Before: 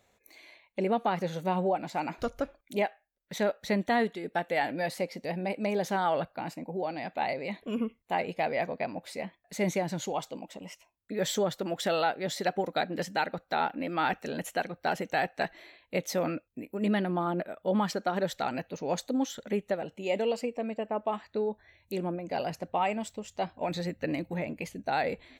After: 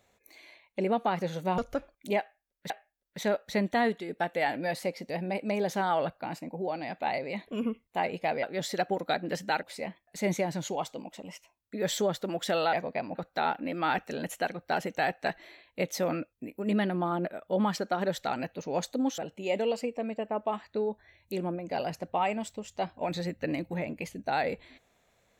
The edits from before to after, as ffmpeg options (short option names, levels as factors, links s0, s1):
-filter_complex "[0:a]asplit=8[s0][s1][s2][s3][s4][s5][s6][s7];[s0]atrim=end=1.582[s8];[s1]atrim=start=2.238:end=3.362[s9];[s2]atrim=start=2.848:end=8.582[s10];[s3]atrim=start=12.098:end=13.302[s11];[s4]atrim=start=8.998:end=12.102[s12];[s5]atrim=start=8.578:end=9.002[s13];[s6]atrim=start=13.298:end=19.332[s14];[s7]atrim=start=19.778[s15];[s8][s9]acrossfade=d=0.004:c1=hsin:c2=hsin[s16];[s16][s10]acrossfade=d=0.004:c1=hsin:c2=hsin[s17];[s17][s11]acrossfade=d=0.004:c1=hsin:c2=hsin[s18];[s18][s12]acrossfade=d=0.004:c1=hsin:c2=hsin[s19];[s19][s13]acrossfade=d=0.004:c1=hsin:c2=hsin[s20];[s20][s14]acrossfade=d=0.004:c1=hsin:c2=hsin[s21];[s21][s15]acrossfade=d=0.004:c1=hsin:c2=hsin"